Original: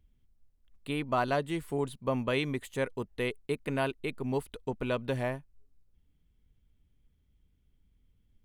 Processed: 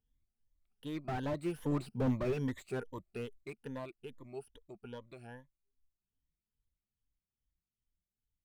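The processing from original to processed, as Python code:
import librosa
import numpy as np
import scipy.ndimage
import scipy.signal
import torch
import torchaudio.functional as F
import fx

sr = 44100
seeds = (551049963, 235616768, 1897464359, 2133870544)

y = fx.spec_ripple(x, sr, per_octave=1.1, drift_hz=2.5, depth_db=19)
y = fx.doppler_pass(y, sr, speed_mps=13, closest_m=3.8, pass_at_s=1.99)
y = fx.slew_limit(y, sr, full_power_hz=13.0)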